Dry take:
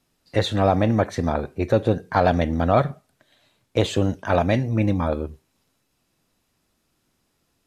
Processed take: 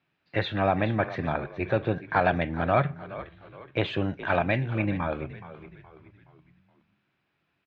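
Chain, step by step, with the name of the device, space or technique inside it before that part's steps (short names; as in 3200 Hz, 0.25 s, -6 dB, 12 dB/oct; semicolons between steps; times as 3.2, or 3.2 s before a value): frequency-shifting delay pedal into a guitar cabinet (frequency-shifting echo 0.421 s, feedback 44%, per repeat -71 Hz, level -14 dB; speaker cabinet 110–3500 Hz, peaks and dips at 140 Hz +3 dB, 240 Hz -7 dB, 480 Hz -6 dB, 1600 Hz +6 dB, 2400 Hz +7 dB); gain -4 dB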